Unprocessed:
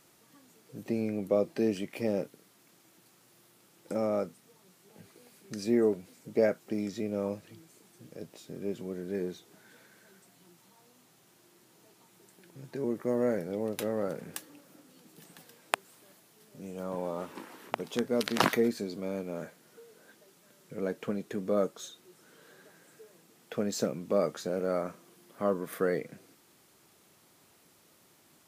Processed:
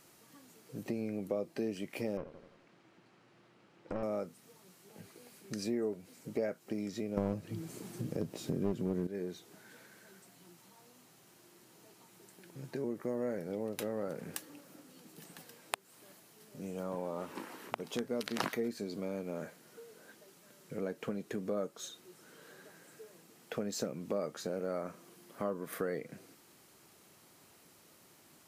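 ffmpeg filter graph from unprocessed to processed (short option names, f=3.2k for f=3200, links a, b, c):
-filter_complex "[0:a]asettb=1/sr,asplit=3[a][b][c];[a]atrim=end=2.174[d];[b]atrim=start=2.17:end=4.03,asetpts=PTS-STARTPTS,afade=t=in:d=0.004:c=qsin,afade=t=out:st=1.856:d=0.004:c=qsin,aeval=exprs='clip(val(0),-1,0.0126)':c=same,lowpass=2.8k,aecho=1:1:85|170|255|340|425:0.2|0.104|0.054|0.0281|0.0146,atrim=end_sample=82026[e];[c]atrim=start=4.026[f];[d][e]acrossfade=d=0.004:c1=hsin:c2=qsin[g];[g][f]acrossfade=d=0.004:c1=qsin:c2=hsin,asettb=1/sr,asplit=3[h][i][j];[h]atrim=end=7.174[k];[i]atrim=start=7.17:end=9.07,asetpts=PTS-STARTPTS,afade=t=in:d=0.004:c=qsin,afade=t=out:st=1.896:d=0.004:c=qsin,lowshelf=f=420:g=11.5,acontrast=86,aeval=exprs='clip(val(0),-1,0.075)':c=same[l];[j]atrim=start=9.066[m];[k][l]acrossfade=d=0.004:c1=hsin:c2=qsin[n];[n][m]acrossfade=d=0.004:c1=qsin:c2=hsin,bandreject=f=3.5k:w=25,acompressor=threshold=-37dB:ratio=2.5,volume=1dB"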